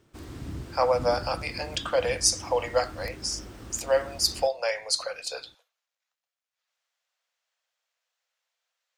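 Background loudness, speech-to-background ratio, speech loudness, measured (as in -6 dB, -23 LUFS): -41.5 LUFS, 14.0 dB, -27.5 LUFS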